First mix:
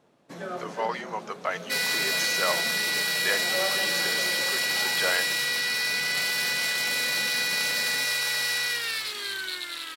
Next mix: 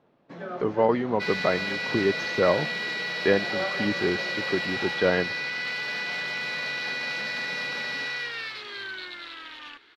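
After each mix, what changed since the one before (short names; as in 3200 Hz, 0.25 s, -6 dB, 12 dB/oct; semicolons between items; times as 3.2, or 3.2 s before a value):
speech: remove HPF 960 Hz 12 dB/oct; second sound: entry -0.50 s; master: add air absorption 240 m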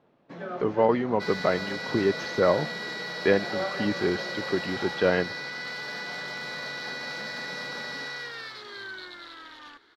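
second sound: add bell 2600 Hz -13.5 dB 0.65 oct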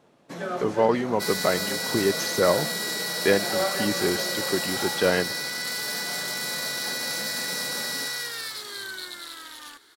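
first sound +4.0 dB; master: remove air absorption 240 m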